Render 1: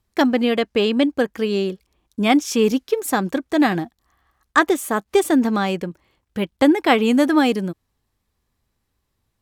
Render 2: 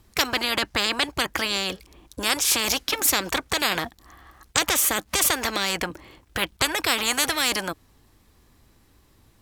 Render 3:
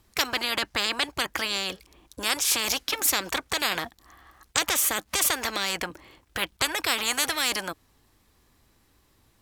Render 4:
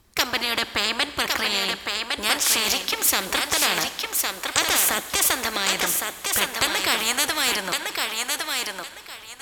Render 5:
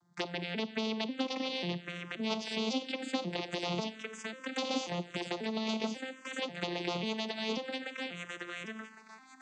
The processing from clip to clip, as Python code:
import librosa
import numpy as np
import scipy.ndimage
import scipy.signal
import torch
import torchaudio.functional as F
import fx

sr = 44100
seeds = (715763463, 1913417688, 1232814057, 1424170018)

y1 = fx.peak_eq(x, sr, hz=310.0, db=5.5, octaves=0.48)
y1 = fx.spectral_comp(y1, sr, ratio=10.0)
y2 = fx.low_shelf(y1, sr, hz=420.0, db=-4.5)
y2 = y2 * librosa.db_to_amplitude(-2.5)
y3 = fx.echo_thinned(y2, sr, ms=1109, feedback_pct=23, hz=310.0, wet_db=-3.5)
y3 = fx.rev_schroeder(y3, sr, rt60_s=2.1, comb_ms=31, drr_db=13.5)
y3 = y3 * librosa.db_to_amplitude(3.0)
y4 = fx.vocoder_arp(y3, sr, chord='major triad', root=53, every_ms=540)
y4 = fx.env_phaser(y4, sr, low_hz=440.0, high_hz=1700.0, full_db=-20.0)
y4 = y4 * librosa.db_to_amplitude(-8.5)